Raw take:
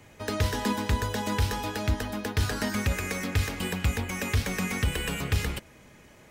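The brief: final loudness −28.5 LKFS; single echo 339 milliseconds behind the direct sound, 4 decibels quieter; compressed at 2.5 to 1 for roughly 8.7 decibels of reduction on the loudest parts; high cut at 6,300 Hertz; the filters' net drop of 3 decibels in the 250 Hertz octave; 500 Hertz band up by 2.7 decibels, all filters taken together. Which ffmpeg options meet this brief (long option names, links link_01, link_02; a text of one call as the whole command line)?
ffmpeg -i in.wav -af "lowpass=6300,equalizer=frequency=250:width_type=o:gain=-5,equalizer=frequency=500:width_type=o:gain=4.5,acompressor=threshold=-34dB:ratio=2.5,aecho=1:1:339:0.631,volume=6dB" out.wav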